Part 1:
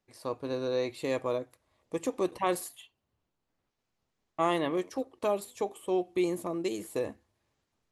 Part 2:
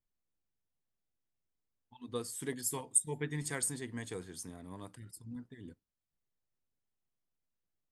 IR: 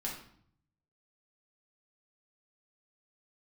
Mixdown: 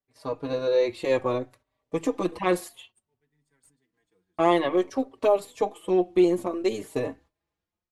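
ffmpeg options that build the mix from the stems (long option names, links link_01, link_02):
-filter_complex "[0:a]acontrast=33,aeval=exprs='0.316*(cos(1*acos(clip(val(0)/0.316,-1,1)))-cos(1*PI/2))+0.00501*(cos(6*acos(clip(val(0)/0.316,-1,1)))-cos(6*PI/2))':channel_layout=same,dynaudnorm=framelen=140:gausssize=5:maxgain=4dB,volume=0dB,asplit=2[link_01][link_02];[1:a]highpass=120,acrusher=bits=4:mode=log:mix=0:aa=0.000001,volume=-12.5dB[link_03];[link_02]apad=whole_len=349181[link_04];[link_03][link_04]sidechaincompress=threshold=-31dB:ratio=6:attack=6.9:release=1060[link_05];[link_01][link_05]amix=inputs=2:normalize=0,agate=range=-13dB:threshold=-48dB:ratio=16:detection=peak,highshelf=frequency=7000:gain=-11.5,asplit=2[link_06][link_07];[link_07]adelay=4.7,afreqshift=0.58[link_08];[link_06][link_08]amix=inputs=2:normalize=1"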